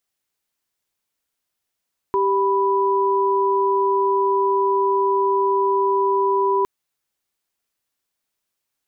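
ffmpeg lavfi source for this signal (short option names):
-f lavfi -i "aevalsrc='0.119*(sin(2*PI*392*t)+sin(2*PI*987.77*t))':d=4.51:s=44100"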